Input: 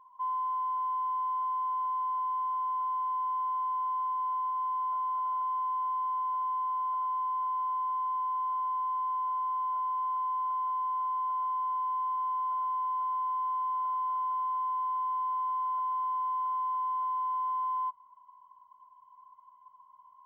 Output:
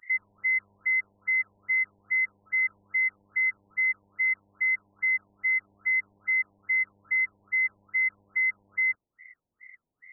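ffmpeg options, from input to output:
-af "asetrate=88200,aresample=44100,acrusher=bits=9:mode=log:mix=0:aa=0.000001,afftfilt=real='re*lt(b*sr/1024,980*pow(2600/980,0.5+0.5*sin(2*PI*2.4*pts/sr)))':imag='im*lt(b*sr/1024,980*pow(2600/980,0.5+0.5*sin(2*PI*2.4*pts/sr)))':win_size=1024:overlap=0.75,volume=2.37"

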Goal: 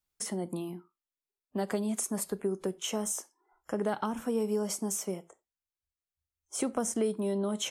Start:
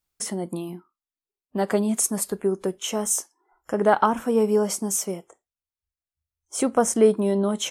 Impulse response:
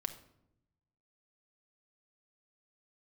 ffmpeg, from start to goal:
-filter_complex "[0:a]asplit=2[s0][s1];[1:a]atrim=start_sample=2205,atrim=end_sample=4410[s2];[s1][s2]afir=irnorm=-1:irlink=0,volume=0.299[s3];[s0][s3]amix=inputs=2:normalize=0,acrossover=split=300|3000[s4][s5][s6];[s4]acompressor=threshold=0.0501:ratio=4[s7];[s5]acompressor=threshold=0.0562:ratio=4[s8];[s6]acompressor=threshold=0.0562:ratio=4[s9];[s7][s8][s9]amix=inputs=3:normalize=0,volume=0.447"

